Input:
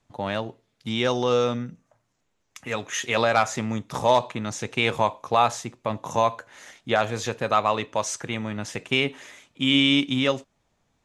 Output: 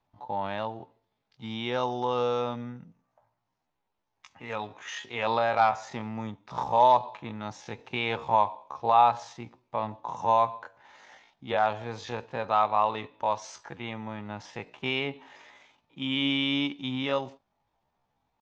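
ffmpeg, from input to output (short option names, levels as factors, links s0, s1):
-af "lowpass=f=5300:w=0.5412,lowpass=f=5300:w=1.3066,equalizer=f=870:t=o:w=0.65:g=11,atempo=0.6,volume=0.376"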